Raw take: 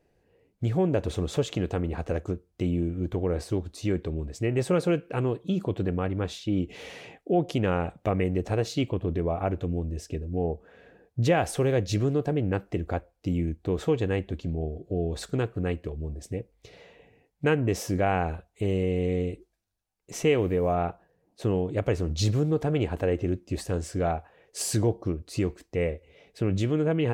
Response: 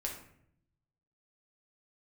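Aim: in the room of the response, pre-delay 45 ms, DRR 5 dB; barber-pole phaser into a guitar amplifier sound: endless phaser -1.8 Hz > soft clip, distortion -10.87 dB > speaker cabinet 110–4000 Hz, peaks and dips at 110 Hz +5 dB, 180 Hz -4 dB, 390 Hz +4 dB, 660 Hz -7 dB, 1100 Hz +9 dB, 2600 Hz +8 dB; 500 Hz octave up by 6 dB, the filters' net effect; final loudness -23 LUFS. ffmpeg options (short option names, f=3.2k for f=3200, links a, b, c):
-filter_complex "[0:a]equalizer=f=500:t=o:g=6,asplit=2[a][b];[1:a]atrim=start_sample=2205,adelay=45[c];[b][c]afir=irnorm=-1:irlink=0,volume=-6dB[d];[a][d]amix=inputs=2:normalize=0,asplit=2[e][f];[f]afreqshift=-1.8[g];[e][g]amix=inputs=2:normalize=1,asoftclip=threshold=-22.5dB,highpass=110,equalizer=f=110:t=q:w=4:g=5,equalizer=f=180:t=q:w=4:g=-4,equalizer=f=390:t=q:w=4:g=4,equalizer=f=660:t=q:w=4:g=-7,equalizer=f=1.1k:t=q:w=4:g=9,equalizer=f=2.6k:t=q:w=4:g=8,lowpass=f=4k:w=0.5412,lowpass=f=4k:w=1.3066,volume=7dB"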